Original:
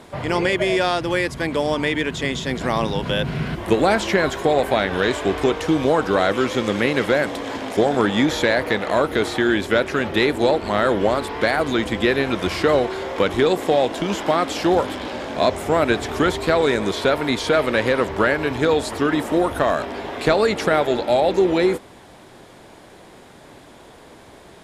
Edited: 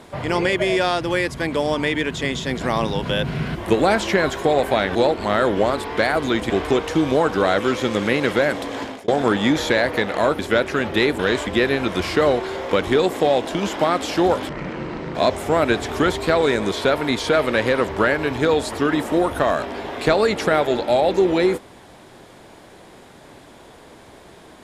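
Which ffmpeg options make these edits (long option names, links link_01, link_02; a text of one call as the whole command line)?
ffmpeg -i in.wav -filter_complex "[0:a]asplit=9[link_01][link_02][link_03][link_04][link_05][link_06][link_07][link_08][link_09];[link_01]atrim=end=4.952[link_10];[link_02]atrim=start=10.388:end=11.942[link_11];[link_03]atrim=start=5.228:end=7.81,asetpts=PTS-STARTPTS,afade=type=out:start_time=2.332:duration=0.25[link_12];[link_04]atrim=start=7.81:end=9.122,asetpts=PTS-STARTPTS,afade=type=in:duration=0.004:curve=hsin[link_13];[link_05]atrim=start=9.588:end=10.392[link_14];[link_06]atrim=start=4.948:end=5.232[link_15];[link_07]atrim=start=11.938:end=14.964[link_16];[link_08]atrim=start=14.96:end=15.35,asetpts=PTS-STARTPTS,asetrate=26019,aresample=44100[link_17];[link_09]atrim=start=15.346[link_18];[link_10][link_11]acrossfade=duration=0.004:curve1=hsin:curve2=hsin[link_19];[link_12][link_13]concat=n=2:v=0:a=1[link_20];[link_19][link_20]acrossfade=duration=0.004:curve1=hsin:curve2=hsin[link_21];[link_21][link_14]acrossfade=duration=0.004:curve1=hsin:curve2=hsin[link_22];[link_22][link_15]acrossfade=duration=0.004:curve1=hsin:curve2=hsin[link_23];[link_23][link_16]acrossfade=duration=0.004:curve1=hsin:curve2=hsin[link_24];[link_24][link_17]acrossfade=duration=0.004:curve1=hsin:curve2=hsin[link_25];[link_25][link_18]acrossfade=duration=0.004:curve1=hsin:curve2=hsin" out.wav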